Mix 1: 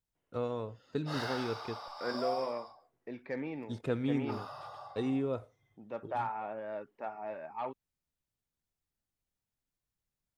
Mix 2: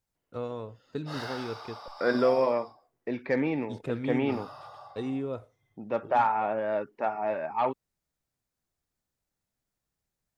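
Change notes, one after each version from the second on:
second voice +11.0 dB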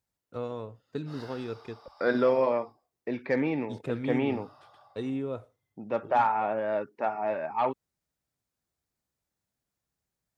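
background -10.5 dB; master: add HPF 46 Hz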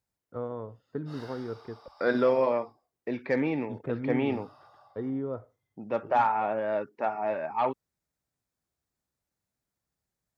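first voice: add polynomial smoothing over 41 samples

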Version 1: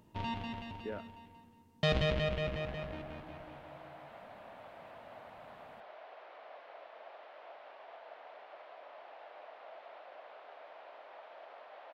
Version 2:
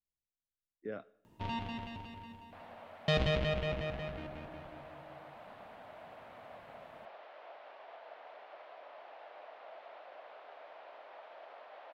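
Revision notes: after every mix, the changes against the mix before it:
first sound: entry +1.25 s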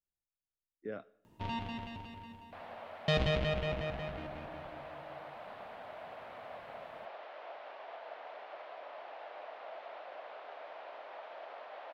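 second sound +4.5 dB

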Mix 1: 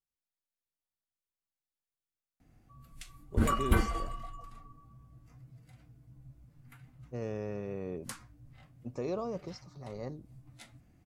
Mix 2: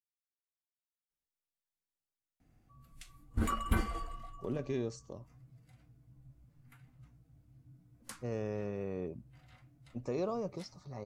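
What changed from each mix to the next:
speech: entry +1.10 s; background -4.5 dB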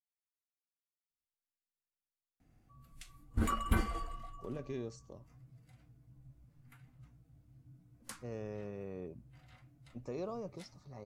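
speech -5.5 dB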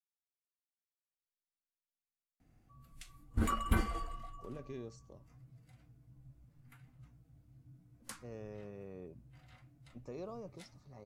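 speech -4.5 dB

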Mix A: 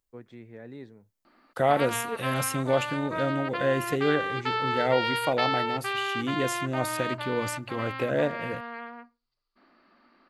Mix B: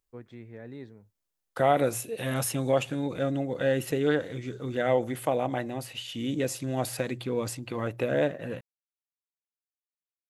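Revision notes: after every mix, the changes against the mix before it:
first voice: remove HPF 120 Hz; background: muted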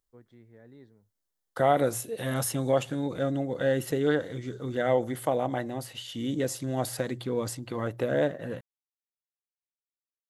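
first voice -9.5 dB; master: add bell 2500 Hz -10.5 dB 0.24 oct

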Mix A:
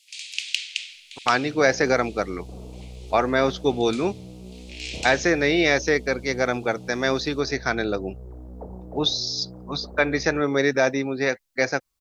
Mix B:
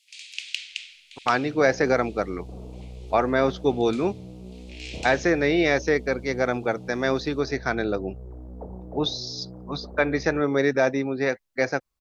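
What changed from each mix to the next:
master: add high shelf 2400 Hz -8 dB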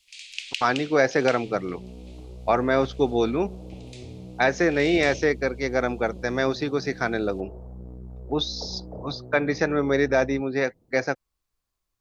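speech: entry -0.65 s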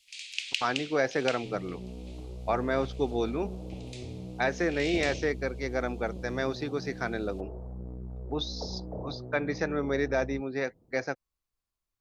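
speech -7.0 dB

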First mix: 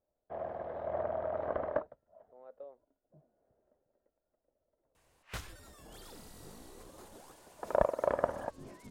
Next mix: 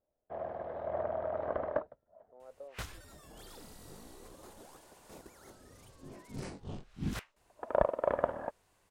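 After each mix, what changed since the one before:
second sound: entry -2.55 s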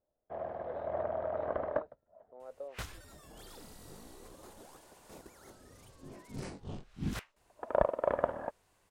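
speech +4.5 dB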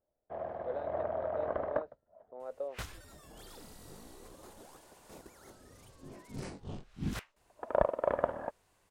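speech +5.5 dB

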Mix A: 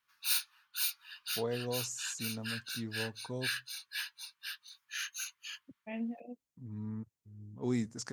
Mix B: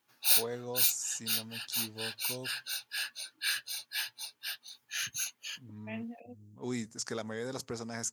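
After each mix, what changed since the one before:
first voice: entry -1.00 s; background: remove steep high-pass 980 Hz 72 dB/oct; master: add tilt +2 dB/oct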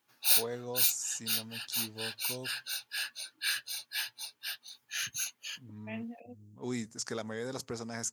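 none

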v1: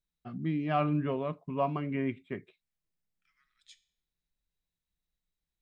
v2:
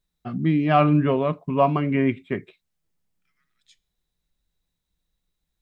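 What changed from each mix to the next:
first voice +11.0 dB; second voice: send -9.5 dB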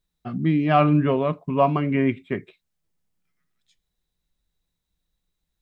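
second voice -8.5 dB

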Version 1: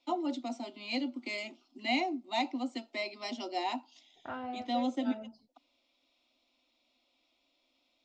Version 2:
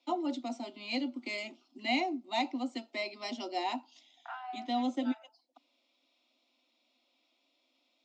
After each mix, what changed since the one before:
second voice: add Chebyshev high-pass 680 Hz, order 10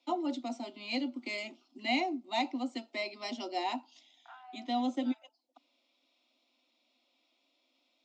second voice -9.5 dB

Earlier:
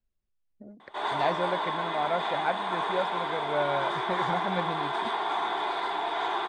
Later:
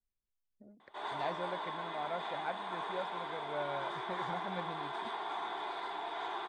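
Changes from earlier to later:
speech -10.5 dB; background -10.0 dB

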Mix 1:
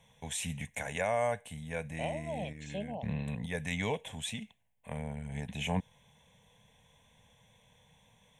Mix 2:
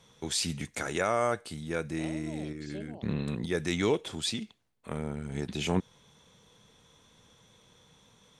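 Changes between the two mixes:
second voice -10.0 dB; master: remove fixed phaser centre 1300 Hz, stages 6

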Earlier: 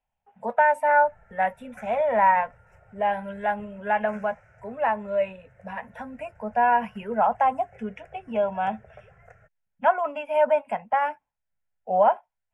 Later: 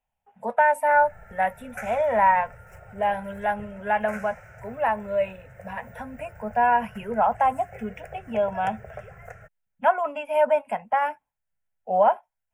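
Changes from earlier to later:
background +9.0 dB; master: remove air absorption 56 m

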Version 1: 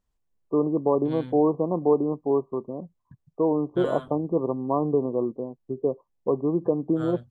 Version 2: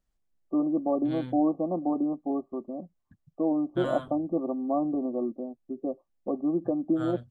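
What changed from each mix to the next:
first voice: add fixed phaser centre 660 Hz, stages 8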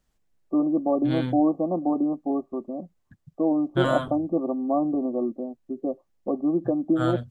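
first voice +3.5 dB; second voice +10.0 dB

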